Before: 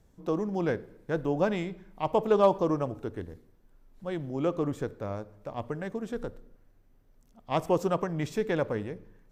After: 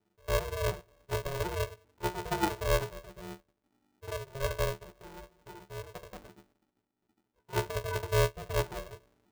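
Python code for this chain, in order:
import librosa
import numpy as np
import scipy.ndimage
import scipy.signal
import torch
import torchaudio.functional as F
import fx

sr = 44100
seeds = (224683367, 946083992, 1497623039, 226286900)

y = fx.hpss(x, sr, part='harmonic', gain_db=7)
y = fx.level_steps(y, sr, step_db=13)
y = fx.leveller(y, sr, passes=1)
y = fx.octave_resonator(y, sr, note='D#', decay_s=0.15)
y = y * np.sign(np.sin(2.0 * np.pi * 270.0 * np.arange(len(y)) / sr))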